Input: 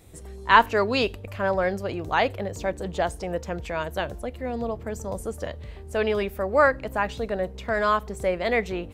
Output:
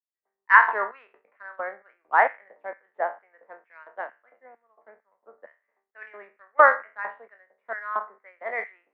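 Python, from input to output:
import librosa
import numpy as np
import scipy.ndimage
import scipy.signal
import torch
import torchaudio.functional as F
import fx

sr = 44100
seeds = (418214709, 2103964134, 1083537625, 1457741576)

y = fx.spec_trails(x, sr, decay_s=0.48)
y = fx.filter_lfo_highpass(y, sr, shape='square', hz=2.2, low_hz=750.0, high_hz=1600.0, q=1.1)
y = scipy.signal.sosfilt(scipy.signal.cheby1(4, 1.0, [200.0, 2000.0], 'bandpass', fs=sr, output='sos'), y)
y = fx.transient(y, sr, attack_db=3, sustain_db=-5)
y = fx.band_widen(y, sr, depth_pct=100)
y = F.gain(torch.from_numpy(y), -7.0).numpy()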